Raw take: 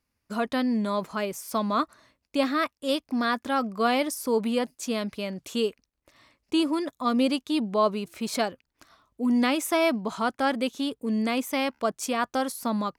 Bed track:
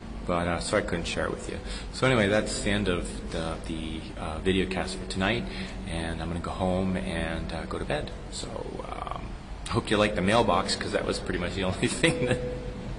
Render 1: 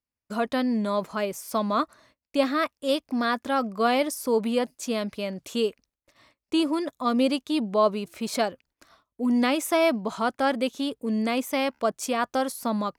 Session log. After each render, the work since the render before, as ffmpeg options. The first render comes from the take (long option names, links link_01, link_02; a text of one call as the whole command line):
ffmpeg -i in.wav -af "agate=range=-15dB:threshold=-59dB:ratio=16:detection=peak,equalizer=frequency=580:width_type=o:width=0.7:gain=3" out.wav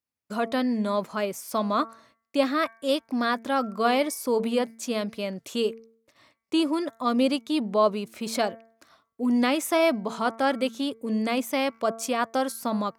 ffmpeg -i in.wav -af "highpass=94,bandreject=frequency=226:width_type=h:width=4,bandreject=frequency=452:width_type=h:width=4,bandreject=frequency=678:width_type=h:width=4,bandreject=frequency=904:width_type=h:width=4,bandreject=frequency=1130:width_type=h:width=4,bandreject=frequency=1356:width_type=h:width=4,bandreject=frequency=1582:width_type=h:width=4,bandreject=frequency=1808:width_type=h:width=4,bandreject=frequency=2034:width_type=h:width=4,bandreject=frequency=2260:width_type=h:width=4" out.wav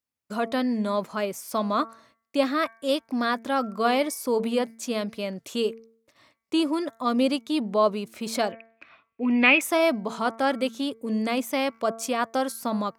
ffmpeg -i in.wav -filter_complex "[0:a]asettb=1/sr,asplit=3[link_01][link_02][link_03];[link_01]atrim=end=8.524[link_04];[link_02]atrim=start=8.52:end=9.61,asetpts=PTS-STARTPTS,afade=type=in:duration=0.004:curve=qsin,afade=type=out:start_time=1.086:duration=0.004:curve=qsin,lowpass=frequency=2500:width_type=q:width=11[link_05];[link_03]atrim=start=9.606[link_06];[link_04][link_05]acrossfade=duration=0.004:curve1=hsin:curve2=qsin[link_07];[link_07][link_06]acrossfade=duration=0.004:curve1=qsin:curve2=hsin" out.wav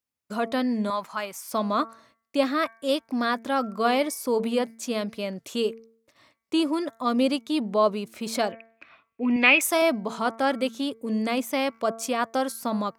ffmpeg -i in.wav -filter_complex "[0:a]asettb=1/sr,asplit=3[link_01][link_02][link_03];[link_01]atrim=end=0.904[link_04];[link_02]atrim=start=0.9:end=1.5,asetpts=PTS-STARTPTS,afade=type=in:duration=0.004:curve=qsin,afade=type=out:start_time=0.596:duration=0.004:curve=qsin,lowshelf=frequency=650:width_type=q:width=1.5:gain=-9[link_05];[link_03]atrim=start=1.496[link_06];[link_04][link_05]acrossfade=duration=0.004:curve1=hsin:curve2=qsin[link_07];[link_07][link_06]acrossfade=duration=0.004:curve1=qsin:curve2=hsin,asettb=1/sr,asplit=3[link_08][link_09][link_10];[link_08]atrim=end=9.364[link_11];[link_09]atrim=start=9.36:end=9.82,asetpts=PTS-STARTPTS,afade=type=in:duration=0.004:curve=qsin,afade=type=out:start_time=0.456:duration=0.004:curve=qsin,bass=frequency=250:gain=-8,treble=frequency=4000:gain=6[link_12];[link_10]atrim=start=9.816[link_13];[link_11][link_12]acrossfade=duration=0.004:curve1=hsin:curve2=qsin[link_14];[link_14][link_13]acrossfade=duration=0.004:curve1=qsin:curve2=hsin" out.wav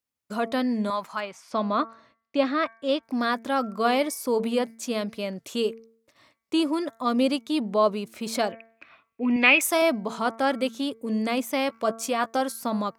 ffmpeg -i in.wav -filter_complex "[0:a]asettb=1/sr,asplit=3[link_01][link_02][link_03];[link_01]atrim=end=1.204[link_04];[link_02]atrim=start=1.2:end=3.03,asetpts=PTS-STARTPTS,afade=type=in:duration=0.004:curve=qsin,afade=type=out:start_time=1.826:duration=0.004:curve=qsin,lowpass=4200[link_05];[link_03]atrim=start=3.026[link_06];[link_04][link_05]acrossfade=duration=0.004:curve1=hsin:curve2=qsin[link_07];[link_07][link_06]acrossfade=duration=0.004:curve1=qsin:curve2=hsin,asettb=1/sr,asplit=3[link_08][link_09][link_10];[link_08]atrim=end=11.684[link_11];[link_09]atrim=start=11.68:end=12.41,asetpts=PTS-STARTPTS,afade=type=in:duration=0.004:curve=qsin,afade=type=out:start_time=0.726:duration=0.004:curve=qsin,asplit=2[link_12][link_13];[link_13]adelay=14,volume=-10.5dB[link_14];[link_12][link_14]amix=inputs=2:normalize=0,atrim=end_sample=32193[link_15];[link_10]atrim=start=12.406[link_16];[link_11][link_15]acrossfade=duration=0.004:curve1=hsin:curve2=qsin[link_17];[link_17][link_16]acrossfade=duration=0.004:curve1=qsin:curve2=hsin" out.wav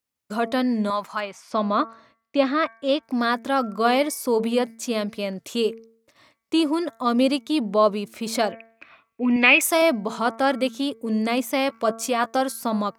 ffmpeg -i in.wav -af "volume=3dB,alimiter=limit=-3dB:level=0:latency=1" out.wav